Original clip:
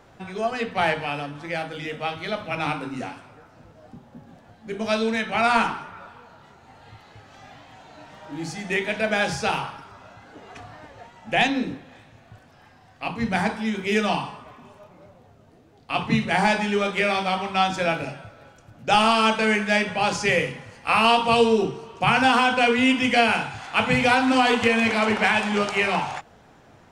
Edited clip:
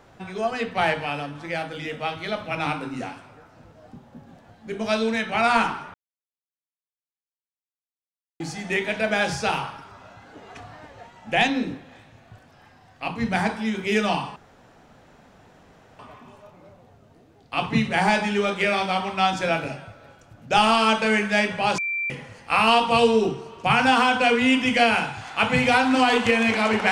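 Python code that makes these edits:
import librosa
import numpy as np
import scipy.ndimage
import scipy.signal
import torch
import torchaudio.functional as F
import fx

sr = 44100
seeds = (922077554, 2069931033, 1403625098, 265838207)

y = fx.edit(x, sr, fx.silence(start_s=5.94, length_s=2.46),
    fx.insert_room_tone(at_s=14.36, length_s=1.63),
    fx.bleep(start_s=20.15, length_s=0.32, hz=2350.0, db=-23.5), tone=tone)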